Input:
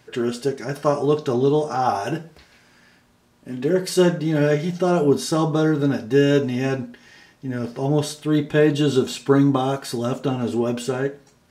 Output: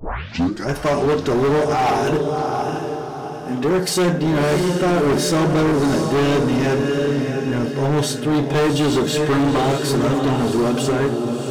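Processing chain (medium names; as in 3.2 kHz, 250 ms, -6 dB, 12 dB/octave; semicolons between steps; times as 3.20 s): tape start-up on the opening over 0.68 s; on a send: echo that smears into a reverb 684 ms, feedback 43%, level -7 dB; on the sum: overload inside the chain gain 20.5 dB; pre-echo 51 ms -22 dB; trim +6 dB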